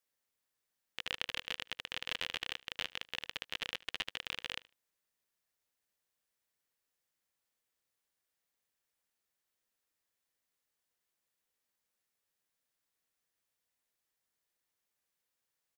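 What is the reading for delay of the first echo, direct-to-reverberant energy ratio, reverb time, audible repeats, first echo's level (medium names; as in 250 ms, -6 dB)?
75 ms, no reverb, no reverb, 1, -22.0 dB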